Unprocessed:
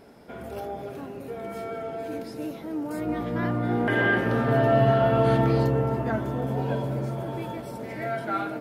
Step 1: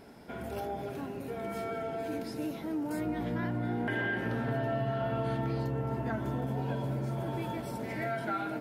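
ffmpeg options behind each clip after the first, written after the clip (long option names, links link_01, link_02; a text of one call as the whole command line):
ffmpeg -i in.wav -af "equalizer=frequency=510:width_type=o:width=0.72:gain=-4.5,bandreject=frequency=1200:width=15,acompressor=threshold=-30dB:ratio=5" out.wav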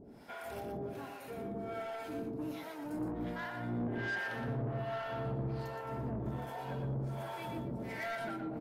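ffmpeg -i in.wav -filter_complex "[0:a]acrossover=split=590[link_01][link_02];[link_01]aeval=exprs='val(0)*(1-1/2+1/2*cos(2*PI*1.3*n/s))':channel_layout=same[link_03];[link_02]aeval=exprs='val(0)*(1-1/2-1/2*cos(2*PI*1.3*n/s))':channel_layout=same[link_04];[link_03][link_04]amix=inputs=2:normalize=0,asoftclip=type=tanh:threshold=-35dB,aecho=1:1:118:0.473,volume=1.5dB" out.wav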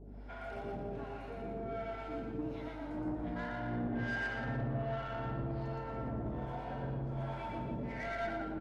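ffmpeg -i in.wav -af "aeval=exprs='val(0)+0.00398*(sin(2*PI*50*n/s)+sin(2*PI*2*50*n/s)/2+sin(2*PI*3*50*n/s)/3+sin(2*PI*4*50*n/s)/4+sin(2*PI*5*50*n/s)/5)':channel_layout=same,aecho=1:1:116.6|163.3|288.6:0.708|0.355|0.316,adynamicsmooth=sensitivity=5:basefreq=3400,volume=-2dB" out.wav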